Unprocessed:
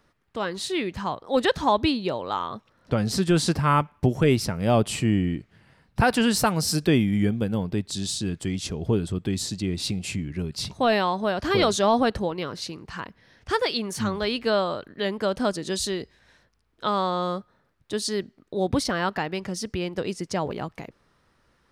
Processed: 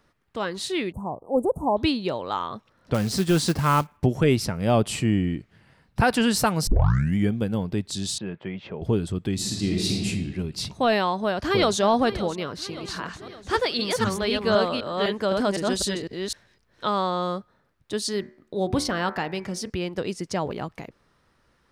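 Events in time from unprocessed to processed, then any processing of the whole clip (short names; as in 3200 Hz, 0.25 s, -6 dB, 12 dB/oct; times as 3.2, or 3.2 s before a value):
0.92–1.77 inverse Chebyshev band-stop 1700–5200 Hz, stop band 50 dB
2.94–3.97 short-mantissa float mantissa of 2-bit
6.67 tape start 0.50 s
8.18–8.82 speaker cabinet 190–2600 Hz, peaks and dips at 280 Hz -10 dB, 560 Hz +6 dB, 910 Hz +5 dB
9.34–10.06 reverb throw, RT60 1.5 s, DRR -1.5 dB
11.15–11.78 echo throw 0.57 s, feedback 55%, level -14 dB
12.52–16.95 reverse delay 0.254 s, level -2 dB
18.11–19.7 de-hum 74.14 Hz, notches 34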